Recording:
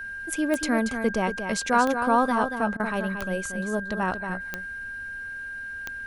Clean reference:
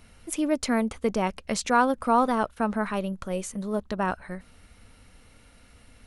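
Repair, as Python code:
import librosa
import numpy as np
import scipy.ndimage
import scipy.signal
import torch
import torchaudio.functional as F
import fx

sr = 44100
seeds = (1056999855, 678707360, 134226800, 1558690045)

y = fx.fix_declick_ar(x, sr, threshold=10.0)
y = fx.notch(y, sr, hz=1600.0, q=30.0)
y = fx.fix_interpolate(y, sr, at_s=(2.77,), length_ms=26.0)
y = fx.fix_echo_inverse(y, sr, delay_ms=232, level_db=-8.0)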